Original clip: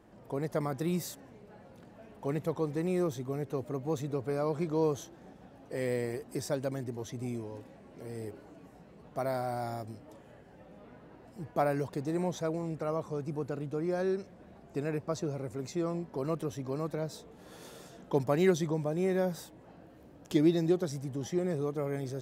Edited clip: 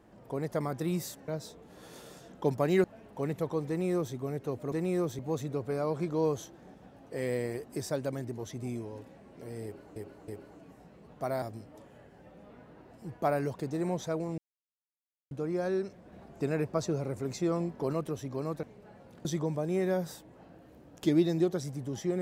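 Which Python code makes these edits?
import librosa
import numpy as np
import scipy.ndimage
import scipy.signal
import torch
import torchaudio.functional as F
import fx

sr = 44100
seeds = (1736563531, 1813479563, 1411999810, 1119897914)

y = fx.edit(x, sr, fx.swap(start_s=1.28, length_s=0.62, other_s=16.97, other_length_s=1.56),
    fx.duplicate(start_s=2.74, length_s=0.47, to_s=3.78),
    fx.repeat(start_s=8.23, length_s=0.32, count=3),
    fx.cut(start_s=9.37, length_s=0.39),
    fx.silence(start_s=12.72, length_s=0.93),
    fx.clip_gain(start_s=14.46, length_s=1.81, db=3.0), tone=tone)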